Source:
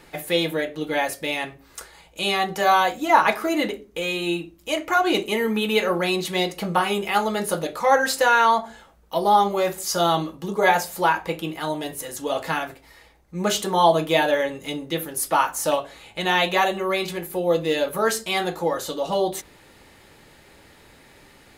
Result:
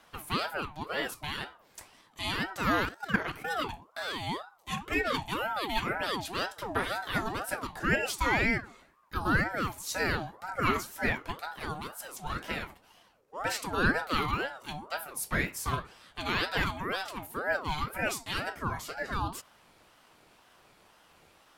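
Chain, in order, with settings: 2.85–3.5 level quantiser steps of 12 dB; ring modulator with a swept carrier 800 Hz, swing 45%, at 2 Hz; gain -7 dB

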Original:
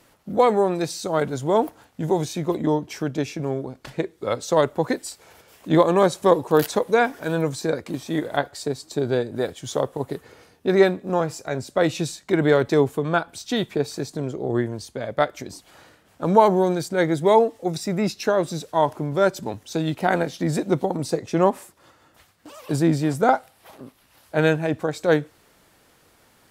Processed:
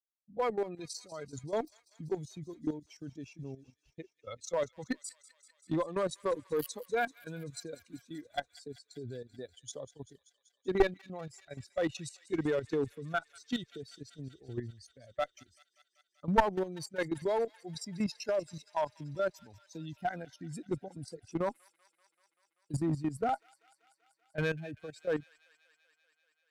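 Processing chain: per-bin expansion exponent 2; expander -47 dBFS; level quantiser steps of 13 dB; one-sided clip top -23 dBFS; thin delay 0.193 s, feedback 76%, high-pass 2300 Hz, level -16 dB; gain -2.5 dB

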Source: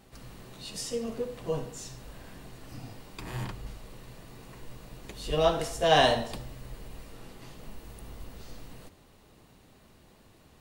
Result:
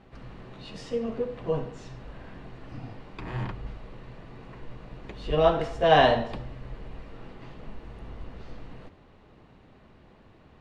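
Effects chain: LPF 2500 Hz 12 dB/oct; gain +3.5 dB

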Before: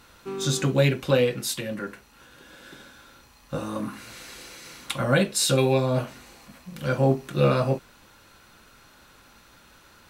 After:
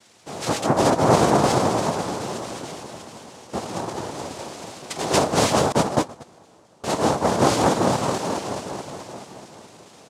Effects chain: comb 6 ms, depth 71%; repeats that get brighter 0.214 s, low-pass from 750 Hz, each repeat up 1 oct, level 0 dB; noise vocoder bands 2; 5.72–6.84 gate -14 dBFS, range -27 dB; gain -2 dB

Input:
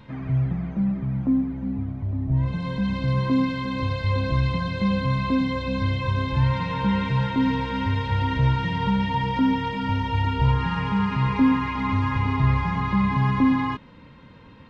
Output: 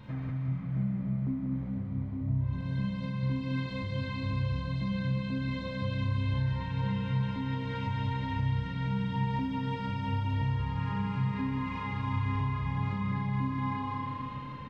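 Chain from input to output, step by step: bell 120 Hz +7 dB 0.59 oct; Schroeder reverb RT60 1.2 s, combs from 30 ms, DRR -1.5 dB; compressor 4:1, threshold -29 dBFS, peak gain reduction 18.5 dB; on a send: bouncing-ball echo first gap 0.19 s, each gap 0.9×, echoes 5; on the sum: gain -4.5 dB

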